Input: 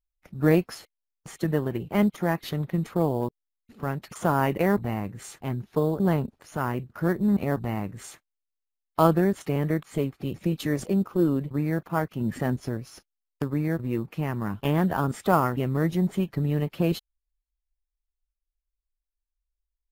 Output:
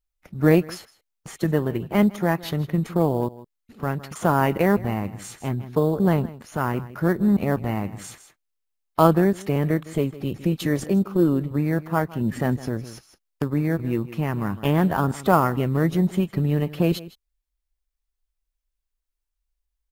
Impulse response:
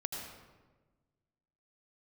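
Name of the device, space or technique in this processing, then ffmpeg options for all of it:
ducked delay: -filter_complex "[0:a]asplit=3[link_01][link_02][link_03];[link_02]adelay=159,volume=-5.5dB[link_04];[link_03]apad=whole_len=885450[link_05];[link_04][link_05]sidechaincompress=threshold=-31dB:ratio=16:attack=7:release=1150[link_06];[link_01][link_06]amix=inputs=2:normalize=0,volume=3.5dB"

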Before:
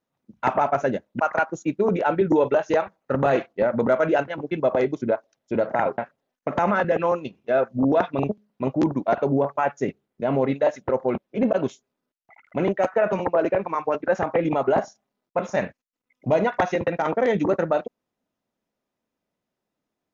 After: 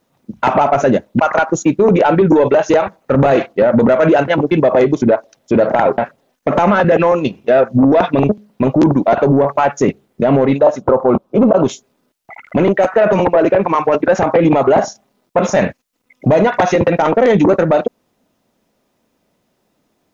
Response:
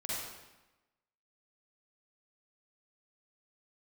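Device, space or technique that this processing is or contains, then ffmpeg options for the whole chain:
mastering chain: -filter_complex "[0:a]equalizer=frequency=1600:width_type=o:width=1.4:gain=-2.5,acompressor=threshold=-22dB:ratio=2,asoftclip=type=tanh:threshold=-16.5dB,alimiter=level_in=22.5dB:limit=-1dB:release=50:level=0:latency=1,asplit=3[link_01][link_02][link_03];[link_01]afade=type=out:start_time=10.58:duration=0.02[link_04];[link_02]highshelf=frequency=1500:width_type=q:width=3:gain=-7,afade=type=in:start_time=10.58:duration=0.02,afade=type=out:start_time=11.64:duration=0.02[link_05];[link_03]afade=type=in:start_time=11.64:duration=0.02[link_06];[link_04][link_05][link_06]amix=inputs=3:normalize=0,volume=-3.5dB"

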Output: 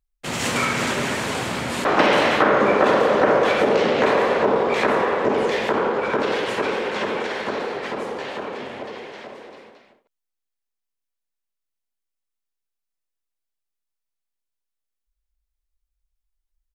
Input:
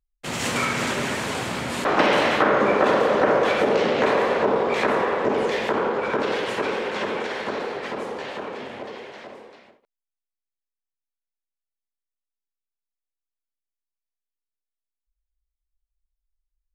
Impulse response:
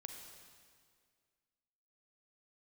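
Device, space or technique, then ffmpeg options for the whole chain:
ducked delay: -filter_complex "[0:a]asplit=3[link_01][link_02][link_03];[link_02]adelay=222,volume=-5dB[link_04];[link_03]apad=whole_len=748123[link_05];[link_04][link_05]sidechaincompress=threshold=-41dB:ratio=8:attack=16:release=354[link_06];[link_01][link_06]amix=inputs=2:normalize=0,volume=2dB"

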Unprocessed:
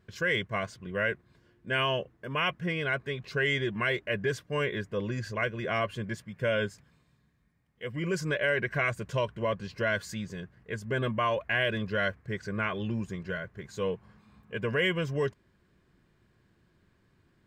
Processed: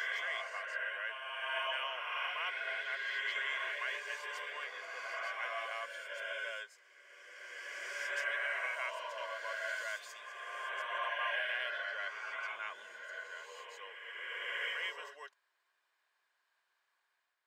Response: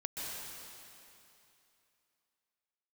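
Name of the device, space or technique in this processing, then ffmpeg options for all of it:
ghost voice: -filter_complex "[0:a]areverse[link_01];[1:a]atrim=start_sample=2205[link_02];[link_01][link_02]afir=irnorm=-1:irlink=0,areverse,highpass=frequency=750:width=0.5412,highpass=frequency=750:width=1.3066,volume=-7dB"

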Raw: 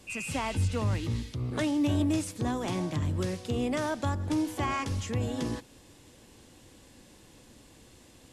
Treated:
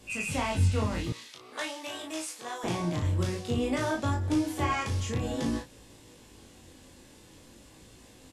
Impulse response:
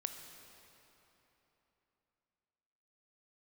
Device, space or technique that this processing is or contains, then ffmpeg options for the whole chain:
double-tracked vocal: -filter_complex "[0:a]asplit=2[link_01][link_02];[link_02]adelay=35,volume=-5dB[link_03];[link_01][link_03]amix=inputs=2:normalize=0,flanger=delay=18.5:depth=5.3:speed=0.5,asettb=1/sr,asplit=3[link_04][link_05][link_06];[link_04]atrim=end=1.124[link_07];[link_05]atrim=start=1.12:end=2.64,asetpts=PTS-STARTPTS,afade=type=in:duration=0.004:curve=qsin,afade=type=out:start_time=1.516:duration=0.004:curve=qsin,highpass=780[link_08];[link_06]atrim=start=2.636[link_09];[link_07][link_08]acrossfade=duration=0.004:curve1=hsin:curve2=qsin[link_10];[link_10][link_09]acrossfade=duration=0.004:curve1=qsin:curve2=hsin,volume=3.5dB"

